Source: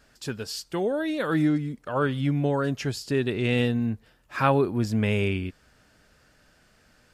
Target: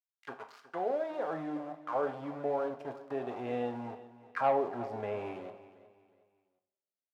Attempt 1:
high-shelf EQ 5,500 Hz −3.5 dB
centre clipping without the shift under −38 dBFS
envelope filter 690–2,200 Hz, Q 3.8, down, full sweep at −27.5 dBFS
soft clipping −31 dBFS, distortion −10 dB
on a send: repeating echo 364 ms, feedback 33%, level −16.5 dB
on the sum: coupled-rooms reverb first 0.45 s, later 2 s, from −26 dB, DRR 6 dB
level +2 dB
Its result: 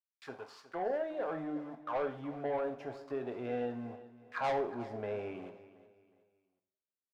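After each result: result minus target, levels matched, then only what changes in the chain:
soft clipping: distortion +11 dB; centre clipping without the shift: distortion −10 dB
change: soft clipping −20.5 dBFS, distortion −20 dB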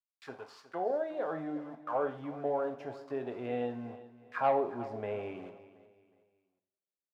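centre clipping without the shift: distortion −10 dB
change: centre clipping without the shift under −30 dBFS

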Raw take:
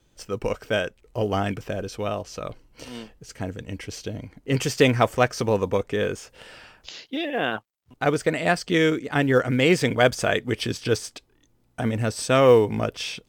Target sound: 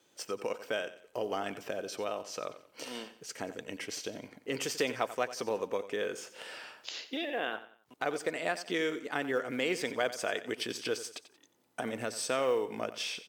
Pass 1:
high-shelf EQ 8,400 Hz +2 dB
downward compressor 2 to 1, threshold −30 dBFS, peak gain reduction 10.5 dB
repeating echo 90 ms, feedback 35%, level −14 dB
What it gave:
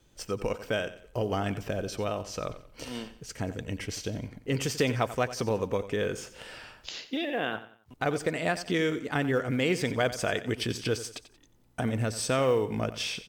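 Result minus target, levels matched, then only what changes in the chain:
downward compressor: peak gain reduction −3.5 dB; 250 Hz band +3.0 dB
add first: high-pass filter 330 Hz 12 dB per octave
change: downward compressor 2 to 1, threshold −37.5 dBFS, peak gain reduction 14 dB

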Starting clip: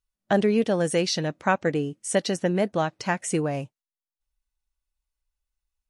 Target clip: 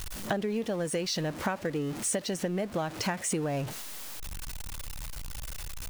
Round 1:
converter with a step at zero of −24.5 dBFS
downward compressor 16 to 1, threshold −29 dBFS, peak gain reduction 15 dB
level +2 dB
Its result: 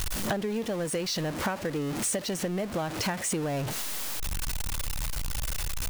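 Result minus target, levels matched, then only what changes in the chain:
converter with a step at zero: distortion +7 dB
change: converter with a step at zero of −32.5 dBFS

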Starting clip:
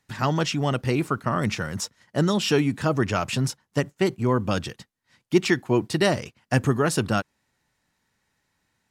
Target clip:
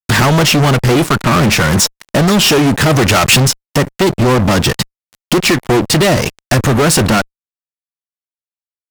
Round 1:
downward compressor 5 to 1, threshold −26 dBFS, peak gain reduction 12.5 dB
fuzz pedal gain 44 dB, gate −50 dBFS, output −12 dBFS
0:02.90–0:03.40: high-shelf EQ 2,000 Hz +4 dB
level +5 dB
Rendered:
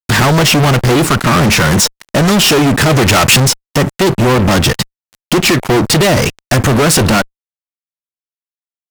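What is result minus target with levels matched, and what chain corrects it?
downward compressor: peak gain reduction −5 dB
downward compressor 5 to 1, threshold −32.5 dBFS, peak gain reduction 17.5 dB
fuzz pedal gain 44 dB, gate −50 dBFS, output −12 dBFS
0:02.90–0:03.40: high-shelf EQ 2,000 Hz +4 dB
level +5 dB

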